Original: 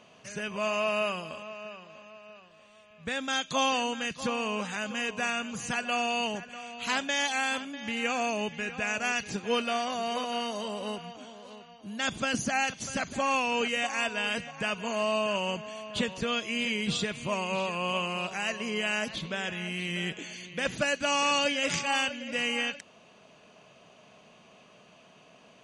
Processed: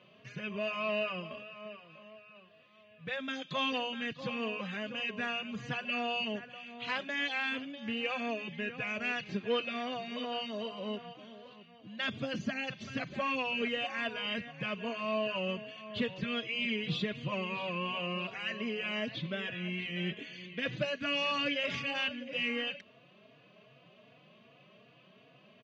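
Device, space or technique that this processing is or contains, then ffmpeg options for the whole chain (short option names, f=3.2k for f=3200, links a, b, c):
barber-pole flanger into a guitar amplifier: -filter_complex "[0:a]asplit=2[a][b];[b]adelay=3.5,afreqshift=2.6[c];[a][c]amix=inputs=2:normalize=1,asoftclip=type=tanh:threshold=-20.5dB,highpass=100,equalizer=f=130:t=q:w=4:g=9,equalizer=f=850:t=q:w=4:g=-10,equalizer=f=1.4k:t=q:w=4:g=-4,lowpass=f=3.9k:w=0.5412,lowpass=f=3.9k:w=1.3066"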